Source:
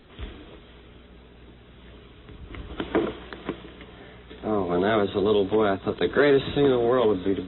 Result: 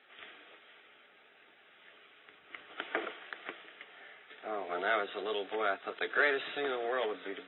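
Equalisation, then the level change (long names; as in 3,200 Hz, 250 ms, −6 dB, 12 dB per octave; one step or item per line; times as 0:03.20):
high-pass with resonance 960 Hz, resonance Q 3.9
high-frequency loss of the air 230 metres
phaser with its sweep stopped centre 2,400 Hz, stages 4
0.0 dB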